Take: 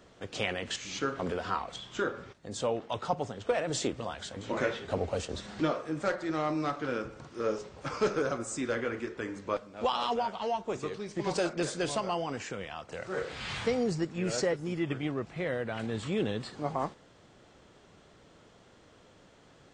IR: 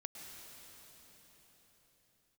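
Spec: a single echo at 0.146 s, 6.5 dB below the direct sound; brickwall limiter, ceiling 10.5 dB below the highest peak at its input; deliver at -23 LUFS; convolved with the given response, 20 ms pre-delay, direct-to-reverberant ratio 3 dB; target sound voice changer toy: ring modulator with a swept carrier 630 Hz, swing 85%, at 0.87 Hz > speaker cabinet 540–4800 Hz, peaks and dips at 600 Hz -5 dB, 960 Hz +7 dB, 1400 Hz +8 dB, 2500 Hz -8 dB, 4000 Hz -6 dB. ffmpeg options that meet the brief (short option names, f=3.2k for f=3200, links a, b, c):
-filter_complex "[0:a]alimiter=level_in=0.5dB:limit=-24dB:level=0:latency=1,volume=-0.5dB,aecho=1:1:146:0.473,asplit=2[a][b];[1:a]atrim=start_sample=2205,adelay=20[c];[b][c]afir=irnorm=-1:irlink=0,volume=0dB[d];[a][d]amix=inputs=2:normalize=0,aeval=exprs='val(0)*sin(2*PI*630*n/s+630*0.85/0.87*sin(2*PI*0.87*n/s))':c=same,highpass=540,equalizer=f=600:t=q:w=4:g=-5,equalizer=f=960:t=q:w=4:g=7,equalizer=f=1.4k:t=q:w=4:g=8,equalizer=f=2.5k:t=q:w=4:g=-8,equalizer=f=4k:t=q:w=4:g=-6,lowpass=f=4.8k:w=0.5412,lowpass=f=4.8k:w=1.3066,volume=10.5dB"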